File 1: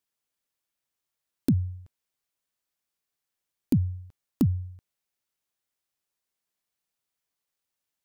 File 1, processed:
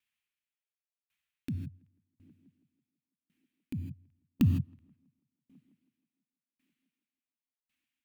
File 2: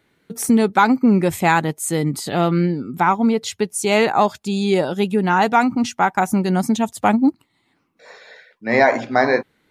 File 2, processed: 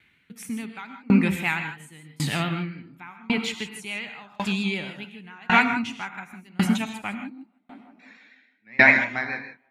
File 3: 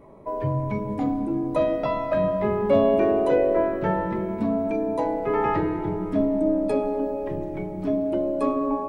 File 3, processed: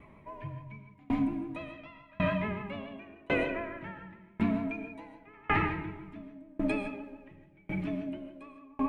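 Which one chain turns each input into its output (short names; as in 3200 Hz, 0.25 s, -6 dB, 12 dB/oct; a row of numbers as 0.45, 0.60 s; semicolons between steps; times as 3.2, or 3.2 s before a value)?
bell 82 Hz +5 dB 0.54 oct; vibrato 7 Hz 59 cents; EQ curve 220 Hz 0 dB, 490 Hz -11 dB, 1300 Hz +1 dB, 2500 Hz +13 dB, 4900 Hz -3 dB; on a send: tape echo 0.163 s, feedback 88%, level -21.5 dB, low-pass 1700 Hz; on the sum: non-linear reverb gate 0.18 s rising, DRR 3 dB; dB-ramp tremolo decaying 0.91 Hz, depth 32 dB; gain -1 dB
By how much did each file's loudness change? -6.0, -6.0, -10.0 LU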